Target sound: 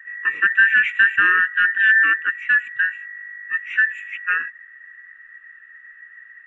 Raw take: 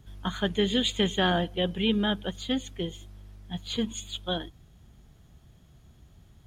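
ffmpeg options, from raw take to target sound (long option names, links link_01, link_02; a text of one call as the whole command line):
ffmpeg -i in.wav -filter_complex "[0:a]afftfilt=real='real(if(between(b,1,1012),(2*floor((b-1)/92)+1)*92-b,b),0)':imag='imag(if(between(b,1,1012),(2*floor((b-1)/92)+1)*92-b,b),0)*if(between(b,1,1012),-1,1)':win_size=2048:overlap=0.75,asplit=2[link_01][link_02];[link_02]highpass=frequency=720:poles=1,volume=8dB,asoftclip=type=tanh:threshold=-11.5dB[link_03];[link_01][link_03]amix=inputs=2:normalize=0,lowpass=frequency=3600:poles=1,volume=-6dB,firequalizer=gain_entry='entry(120,0);entry(440,-1);entry(670,-28);entry(1100,1);entry(1600,13);entry(5100,-25);entry(7800,-15)':delay=0.05:min_phase=1,volume=-2.5dB" out.wav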